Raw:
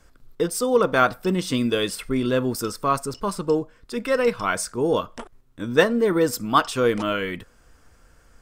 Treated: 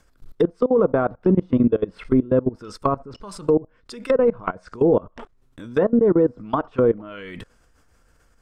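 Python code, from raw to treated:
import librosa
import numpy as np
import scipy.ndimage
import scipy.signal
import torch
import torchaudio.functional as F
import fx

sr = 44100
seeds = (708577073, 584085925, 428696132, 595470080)

y = fx.level_steps(x, sr, step_db=22)
y = fx.env_lowpass_down(y, sr, base_hz=680.0, full_db=-24.5)
y = F.gain(torch.from_numpy(y), 8.0).numpy()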